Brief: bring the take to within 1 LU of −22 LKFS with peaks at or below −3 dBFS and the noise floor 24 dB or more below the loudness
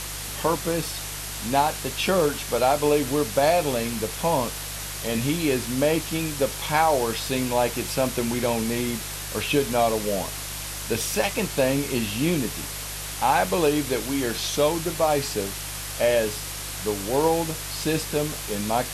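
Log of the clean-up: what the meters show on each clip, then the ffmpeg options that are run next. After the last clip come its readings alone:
mains hum 50 Hz; hum harmonics up to 150 Hz; level of the hum −38 dBFS; background noise floor −34 dBFS; target noise floor −49 dBFS; integrated loudness −24.5 LKFS; sample peak −7.5 dBFS; target loudness −22.0 LKFS
→ -af "bandreject=frequency=50:width_type=h:width=4,bandreject=frequency=100:width_type=h:width=4,bandreject=frequency=150:width_type=h:width=4"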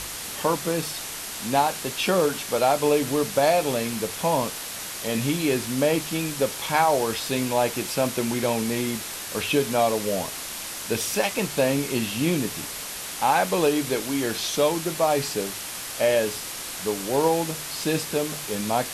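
mains hum none found; background noise floor −35 dBFS; target noise floor −49 dBFS
→ -af "afftdn=noise_reduction=14:noise_floor=-35"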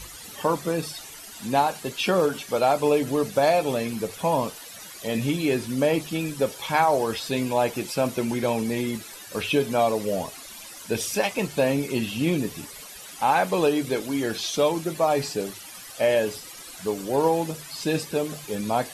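background noise floor −42 dBFS; target noise floor −49 dBFS
→ -af "afftdn=noise_reduction=7:noise_floor=-42"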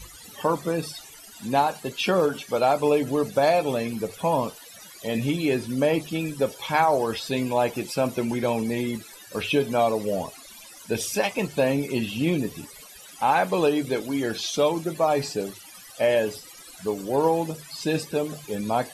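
background noise floor −46 dBFS; target noise floor −49 dBFS
→ -af "afftdn=noise_reduction=6:noise_floor=-46"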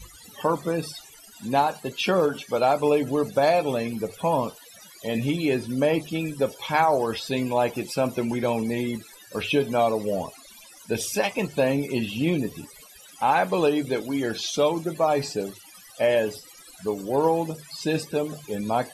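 background noise floor −49 dBFS; integrated loudness −25.0 LKFS; sample peak −7.5 dBFS; target loudness −22.0 LKFS
→ -af "volume=3dB"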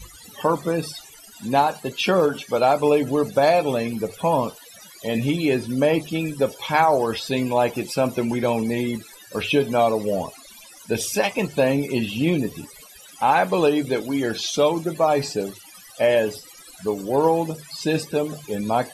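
integrated loudness −22.0 LKFS; sample peak −4.5 dBFS; background noise floor −46 dBFS

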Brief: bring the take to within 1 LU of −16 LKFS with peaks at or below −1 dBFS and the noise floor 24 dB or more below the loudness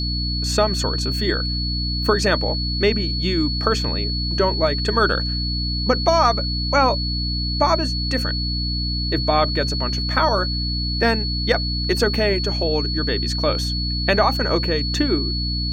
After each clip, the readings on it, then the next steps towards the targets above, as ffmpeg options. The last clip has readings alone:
mains hum 60 Hz; hum harmonics up to 300 Hz; level of the hum −22 dBFS; interfering tone 4,400 Hz; level of the tone −25 dBFS; integrated loudness −20.0 LKFS; sample peak −4.0 dBFS; target loudness −16.0 LKFS
→ -af "bandreject=frequency=60:width_type=h:width=6,bandreject=frequency=120:width_type=h:width=6,bandreject=frequency=180:width_type=h:width=6,bandreject=frequency=240:width_type=h:width=6,bandreject=frequency=300:width_type=h:width=6"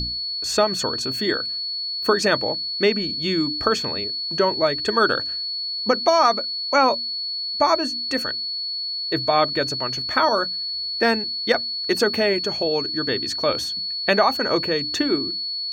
mains hum none found; interfering tone 4,400 Hz; level of the tone −25 dBFS
→ -af "bandreject=frequency=4400:width=30"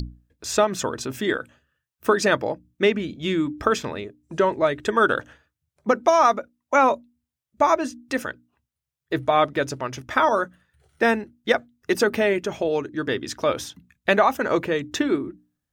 interfering tone none found; integrated loudness −23.0 LKFS; sample peak −4.5 dBFS; target loudness −16.0 LKFS
→ -af "volume=7dB,alimiter=limit=-1dB:level=0:latency=1"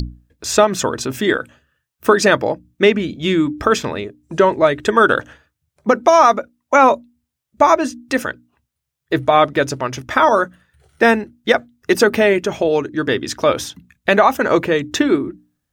integrated loudness −16.5 LKFS; sample peak −1.0 dBFS; background noise floor −79 dBFS

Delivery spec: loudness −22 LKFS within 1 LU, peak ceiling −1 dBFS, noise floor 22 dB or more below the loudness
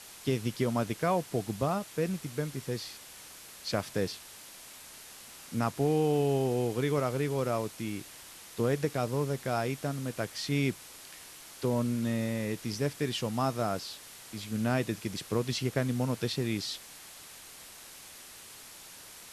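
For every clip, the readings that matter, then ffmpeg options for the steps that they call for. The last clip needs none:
background noise floor −50 dBFS; target noise floor −54 dBFS; integrated loudness −32.0 LKFS; sample peak −15.0 dBFS; target loudness −22.0 LKFS
→ -af "afftdn=noise_reduction=6:noise_floor=-50"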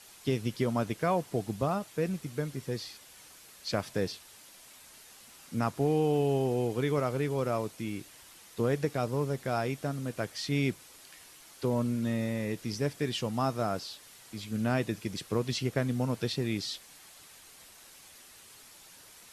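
background noise floor −54 dBFS; integrated loudness −32.0 LKFS; sample peak −15.0 dBFS; target loudness −22.0 LKFS
→ -af "volume=10dB"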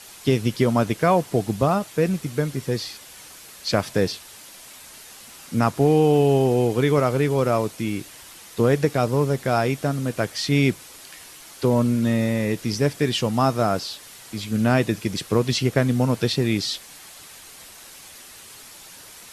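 integrated loudness −22.0 LKFS; sample peak −5.0 dBFS; background noise floor −44 dBFS

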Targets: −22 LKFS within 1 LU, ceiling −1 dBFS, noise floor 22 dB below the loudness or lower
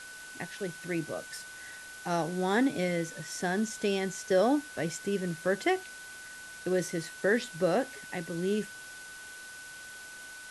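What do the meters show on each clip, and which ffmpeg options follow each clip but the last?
interfering tone 1,500 Hz; level of the tone −45 dBFS; background noise floor −46 dBFS; target noise floor −54 dBFS; integrated loudness −31.5 LKFS; sample peak −15.0 dBFS; target loudness −22.0 LKFS
→ -af "bandreject=frequency=1500:width=30"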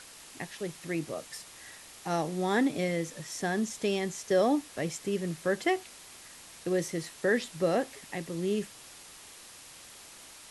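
interfering tone none found; background noise floor −51 dBFS; target noise floor −54 dBFS
→ -af "afftdn=noise_reduction=6:noise_floor=-51"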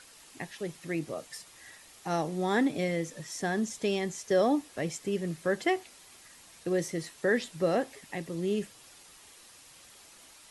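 background noise floor −55 dBFS; integrated loudness −31.5 LKFS; sample peak −15.5 dBFS; target loudness −22.0 LKFS
→ -af "volume=9.5dB"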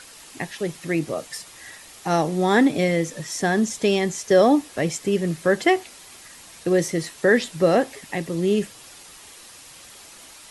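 integrated loudness −22.0 LKFS; sample peak −6.0 dBFS; background noise floor −45 dBFS

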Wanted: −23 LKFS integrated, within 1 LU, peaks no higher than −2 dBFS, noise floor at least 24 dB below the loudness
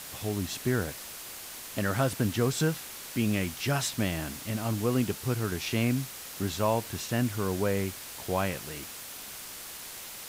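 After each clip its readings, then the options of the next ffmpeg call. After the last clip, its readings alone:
background noise floor −43 dBFS; target noise floor −55 dBFS; integrated loudness −31.0 LKFS; sample peak −14.5 dBFS; target loudness −23.0 LKFS
→ -af "afftdn=noise_reduction=12:noise_floor=-43"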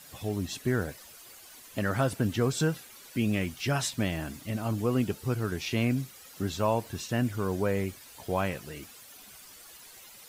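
background noise floor −51 dBFS; target noise floor −55 dBFS
→ -af "afftdn=noise_reduction=6:noise_floor=-51"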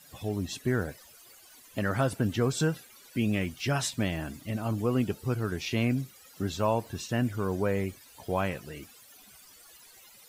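background noise floor −55 dBFS; integrated loudness −30.5 LKFS; sample peak −14.5 dBFS; target loudness −23.0 LKFS
→ -af "volume=7.5dB"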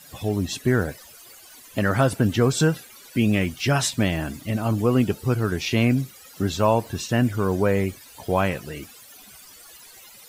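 integrated loudness −23.0 LKFS; sample peak −7.0 dBFS; background noise floor −47 dBFS

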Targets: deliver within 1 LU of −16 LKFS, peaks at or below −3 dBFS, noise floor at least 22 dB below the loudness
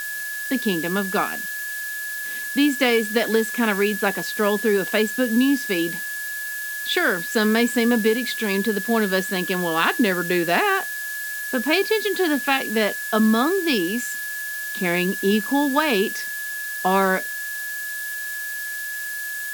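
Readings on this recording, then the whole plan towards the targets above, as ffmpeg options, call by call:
interfering tone 1,700 Hz; level of the tone −28 dBFS; background noise floor −30 dBFS; target noise floor −44 dBFS; integrated loudness −22.0 LKFS; sample peak −4.0 dBFS; target loudness −16.0 LKFS
→ -af "bandreject=frequency=1700:width=30"
-af "afftdn=noise_reduction=14:noise_floor=-30"
-af "volume=6dB,alimiter=limit=-3dB:level=0:latency=1"

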